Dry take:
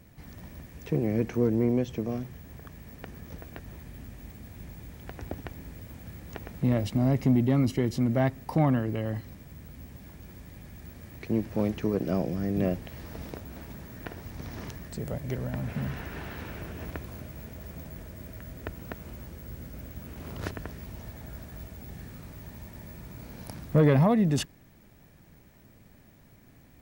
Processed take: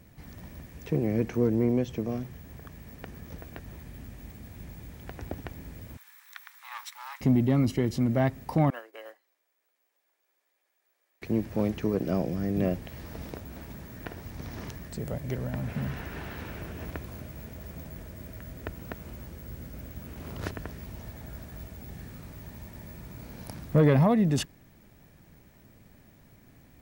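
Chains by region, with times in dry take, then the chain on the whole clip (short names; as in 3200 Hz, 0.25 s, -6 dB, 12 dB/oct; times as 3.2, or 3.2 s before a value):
5.97–7.21 minimum comb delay 0.52 ms + steep high-pass 910 Hz 48 dB/oct
8.7–11.22 Bessel high-pass 680 Hz, order 8 + upward expander 2.5:1, over -51 dBFS
whole clip: dry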